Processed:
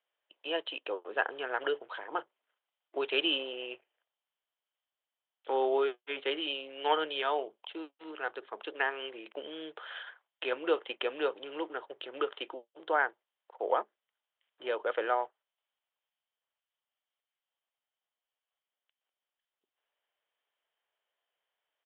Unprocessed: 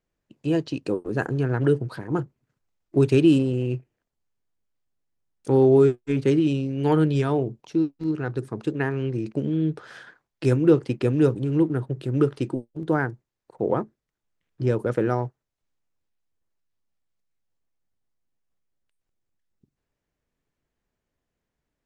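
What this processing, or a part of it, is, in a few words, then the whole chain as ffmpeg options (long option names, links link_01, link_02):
musical greeting card: -af "aresample=8000,aresample=44100,highpass=frequency=580:width=0.5412,highpass=frequency=580:width=1.3066,equalizer=frequency=3100:width_type=o:width=0.22:gain=10.5"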